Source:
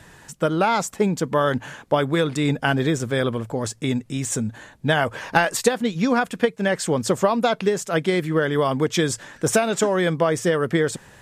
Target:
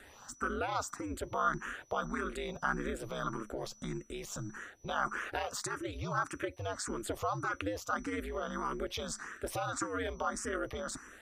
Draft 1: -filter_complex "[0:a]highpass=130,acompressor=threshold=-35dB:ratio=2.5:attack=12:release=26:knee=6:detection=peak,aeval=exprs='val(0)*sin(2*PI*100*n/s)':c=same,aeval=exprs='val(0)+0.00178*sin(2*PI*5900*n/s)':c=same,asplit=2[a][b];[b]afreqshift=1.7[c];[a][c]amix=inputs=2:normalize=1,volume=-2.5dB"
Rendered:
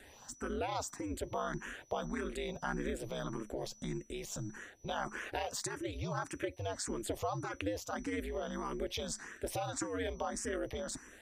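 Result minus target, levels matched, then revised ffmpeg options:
1000 Hz band -2.5 dB
-filter_complex "[0:a]highpass=130,acompressor=threshold=-35dB:ratio=2.5:attack=12:release=26:knee=6:detection=peak,equalizer=f=1.3k:w=4.1:g=14,aeval=exprs='val(0)*sin(2*PI*100*n/s)':c=same,aeval=exprs='val(0)+0.00178*sin(2*PI*5900*n/s)':c=same,asplit=2[a][b];[b]afreqshift=1.7[c];[a][c]amix=inputs=2:normalize=1,volume=-2.5dB"

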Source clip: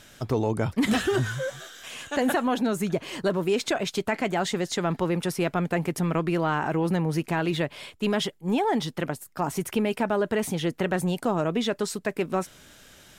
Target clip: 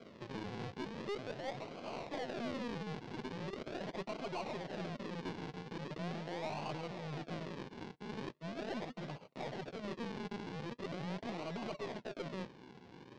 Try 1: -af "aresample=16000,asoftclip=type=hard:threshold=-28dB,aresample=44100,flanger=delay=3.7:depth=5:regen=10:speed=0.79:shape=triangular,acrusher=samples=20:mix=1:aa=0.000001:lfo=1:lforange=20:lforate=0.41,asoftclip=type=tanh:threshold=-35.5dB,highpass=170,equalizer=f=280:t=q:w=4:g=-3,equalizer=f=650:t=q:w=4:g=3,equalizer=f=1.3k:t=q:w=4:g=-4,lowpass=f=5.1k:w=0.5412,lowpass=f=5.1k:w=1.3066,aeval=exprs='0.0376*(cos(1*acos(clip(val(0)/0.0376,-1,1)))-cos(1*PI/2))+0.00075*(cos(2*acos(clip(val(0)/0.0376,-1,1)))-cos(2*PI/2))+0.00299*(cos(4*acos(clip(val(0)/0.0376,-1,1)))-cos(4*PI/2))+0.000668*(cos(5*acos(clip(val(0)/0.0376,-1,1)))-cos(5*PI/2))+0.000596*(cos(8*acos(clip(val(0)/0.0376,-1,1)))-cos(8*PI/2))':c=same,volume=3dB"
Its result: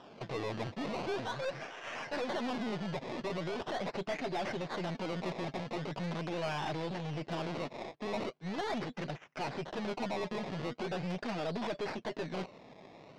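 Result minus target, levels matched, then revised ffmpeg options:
decimation with a swept rate: distortion -8 dB; hard clip: distortion -4 dB
-af "aresample=16000,asoftclip=type=hard:threshold=-39dB,aresample=44100,flanger=delay=3.7:depth=5:regen=10:speed=0.79:shape=triangular,acrusher=samples=48:mix=1:aa=0.000001:lfo=1:lforange=48:lforate=0.41,asoftclip=type=tanh:threshold=-35.5dB,highpass=170,equalizer=f=280:t=q:w=4:g=-3,equalizer=f=650:t=q:w=4:g=3,equalizer=f=1.3k:t=q:w=4:g=-4,lowpass=f=5.1k:w=0.5412,lowpass=f=5.1k:w=1.3066,aeval=exprs='0.0376*(cos(1*acos(clip(val(0)/0.0376,-1,1)))-cos(1*PI/2))+0.00075*(cos(2*acos(clip(val(0)/0.0376,-1,1)))-cos(2*PI/2))+0.00299*(cos(4*acos(clip(val(0)/0.0376,-1,1)))-cos(4*PI/2))+0.000668*(cos(5*acos(clip(val(0)/0.0376,-1,1)))-cos(5*PI/2))+0.000596*(cos(8*acos(clip(val(0)/0.0376,-1,1)))-cos(8*PI/2))':c=same,volume=3dB"

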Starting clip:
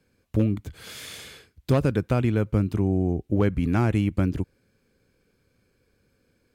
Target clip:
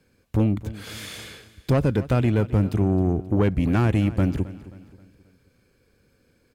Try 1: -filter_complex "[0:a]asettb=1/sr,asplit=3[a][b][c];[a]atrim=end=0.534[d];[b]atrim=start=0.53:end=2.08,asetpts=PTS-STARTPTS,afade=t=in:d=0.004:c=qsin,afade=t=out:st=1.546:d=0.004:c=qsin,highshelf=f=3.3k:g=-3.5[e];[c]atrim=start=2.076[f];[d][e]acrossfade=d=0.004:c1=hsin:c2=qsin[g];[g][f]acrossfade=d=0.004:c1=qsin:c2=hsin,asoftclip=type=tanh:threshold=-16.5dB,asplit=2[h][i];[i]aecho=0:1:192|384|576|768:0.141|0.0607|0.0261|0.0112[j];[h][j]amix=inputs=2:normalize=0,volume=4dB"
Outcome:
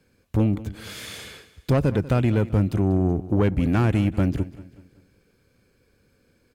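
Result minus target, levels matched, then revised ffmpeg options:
echo 74 ms early
-filter_complex "[0:a]asettb=1/sr,asplit=3[a][b][c];[a]atrim=end=0.534[d];[b]atrim=start=0.53:end=2.08,asetpts=PTS-STARTPTS,afade=t=in:d=0.004:c=qsin,afade=t=out:st=1.546:d=0.004:c=qsin,highshelf=f=3.3k:g=-3.5[e];[c]atrim=start=2.076[f];[d][e]acrossfade=d=0.004:c1=hsin:c2=qsin[g];[g][f]acrossfade=d=0.004:c1=qsin:c2=hsin,asoftclip=type=tanh:threshold=-16.5dB,asplit=2[h][i];[i]aecho=0:1:266|532|798|1064:0.141|0.0607|0.0261|0.0112[j];[h][j]amix=inputs=2:normalize=0,volume=4dB"

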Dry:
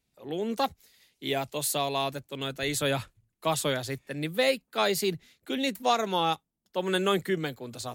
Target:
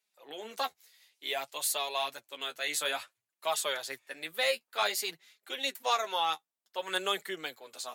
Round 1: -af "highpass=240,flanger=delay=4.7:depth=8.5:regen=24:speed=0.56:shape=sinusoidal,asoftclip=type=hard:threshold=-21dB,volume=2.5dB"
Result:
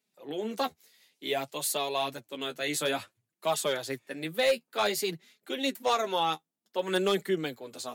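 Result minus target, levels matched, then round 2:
250 Hz band +12.0 dB
-af "highpass=760,flanger=delay=4.7:depth=8.5:regen=24:speed=0.56:shape=sinusoidal,asoftclip=type=hard:threshold=-21dB,volume=2.5dB"

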